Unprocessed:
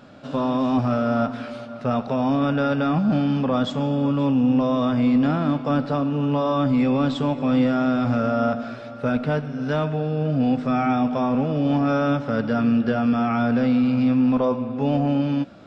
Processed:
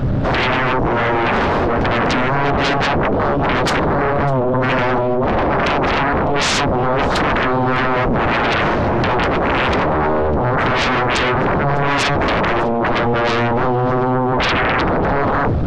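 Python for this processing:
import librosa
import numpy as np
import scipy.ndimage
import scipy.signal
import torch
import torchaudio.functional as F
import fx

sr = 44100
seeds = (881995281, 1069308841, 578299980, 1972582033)

p1 = fx.octave_divider(x, sr, octaves=1, level_db=3.0)
p2 = fx.tilt_eq(p1, sr, slope=-3.5)
p3 = fx.hum_notches(p2, sr, base_hz=50, count=7)
p4 = fx.over_compress(p3, sr, threshold_db=-14.0, ratio=-1.0)
p5 = fx.fold_sine(p4, sr, drive_db=19, ceiling_db=-5.0)
p6 = p5 + fx.echo_single(p5, sr, ms=602, db=-23.5, dry=0)
p7 = fx.doppler_dist(p6, sr, depth_ms=0.29)
y = p7 * 10.0 ** (-8.0 / 20.0)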